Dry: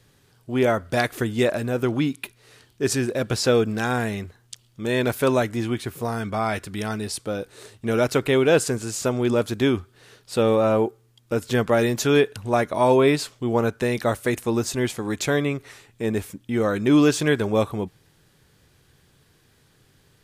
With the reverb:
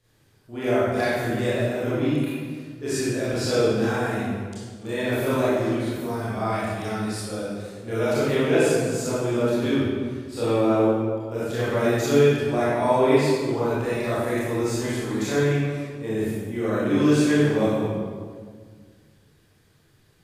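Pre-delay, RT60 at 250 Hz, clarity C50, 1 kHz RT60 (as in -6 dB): 25 ms, 2.1 s, -5.0 dB, 1.6 s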